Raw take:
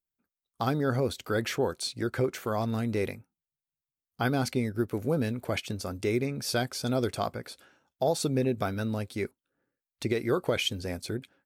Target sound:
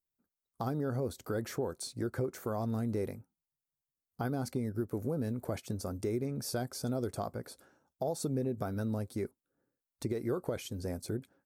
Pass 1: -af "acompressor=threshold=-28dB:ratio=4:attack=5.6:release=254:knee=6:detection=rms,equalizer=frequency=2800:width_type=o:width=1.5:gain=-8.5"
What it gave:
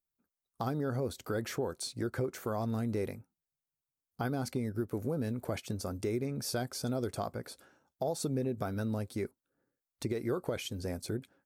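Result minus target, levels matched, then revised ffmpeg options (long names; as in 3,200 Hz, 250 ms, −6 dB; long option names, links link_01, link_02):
2,000 Hz band +3.0 dB
-af "acompressor=threshold=-28dB:ratio=4:attack=5.6:release=254:knee=6:detection=rms,equalizer=frequency=2800:width_type=o:width=1.5:gain=-15"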